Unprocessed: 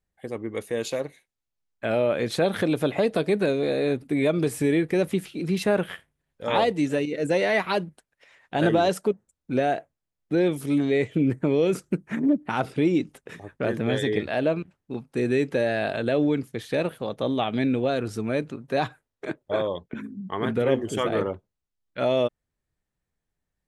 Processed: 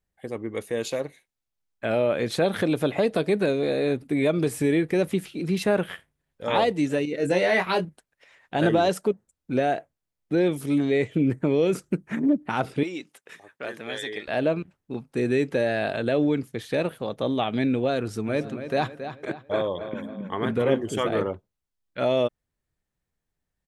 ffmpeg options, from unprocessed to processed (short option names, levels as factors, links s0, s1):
-filter_complex "[0:a]asettb=1/sr,asplit=3[s0][s1][s2];[s0]atrim=end=7.174[s3];[s1]atrim=start=7.17:end=7.85,asetpts=PTS-STARTPTS,afade=t=in:d=0.004:c=qsin,afade=t=out:st=0.676:d=0.004:c=qsin,asplit=2[s4][s5];[s5]adelay=22,volume=0.531[s6];[s4][s6]amix=inputs=2:normalize=0,atrim=end_sample=29988[s7];[s2]atrim=start=7.846[s8];[s3][s7]acrossfade=d=0.004:c1=hsin:c2=qsin[s9];[s9][s8]acrossfade=d=0.004:c1=qsin:c2=hsin,asettb=1/sr,asplit=3[s10][s11][s12];[s10]atrim=end=12.834[s13];[s11]atrim=start=12.83:end=14.28,asetpts=PTS-STARTPTS,afade=t=in:d=0.004:c=qsin,afade=t=out:st=1.446:d=0.004:c=qsin,highpass=f=1300:p=1[s14];[s12]atrim=start=14.276[s15];[s13][s14]acrossfade=d=0.004:c1=hsin:c2=qsin[s16];[s16][s15]acrossfade=d=0.004:c1=qsin:c2=hsin,asplit=3[s17][s18][s19];[s17]afade=t=out:st=18.26:d=0.02[s20];[s18]asplit=2[s21][s22];[s22]adelay=274,lowpass=f=4600:p=1,volume=0.316,asplit=2[s23][s24];[s24]adelay=274,lowpass=f=4600:p=1,volume=0.43,asplit=2[s25][s26];[s26]adelay=274,lowpass=f=4600:p=1,volume=0.43,asplit=2[s27][s28];[s28]adelay=274,lowpass=f=4600:p=1,volume=0.43,asplit=2[s29][s30];[s30]adelay=274,lowpass=f=4600:p=1,volume=0.43[s31];[s21][s23][s25][s27][s29][s31]amix=inputs=6:normalize=0,afade=t=in:st=18.26:d=0.02,afade=t=out:st=20.79:d=0.02[s32];[s19]afade=t=in:st=20.79:d=0.02[s33];[s20][s32][s33]amix=inputs=3:normalize=0"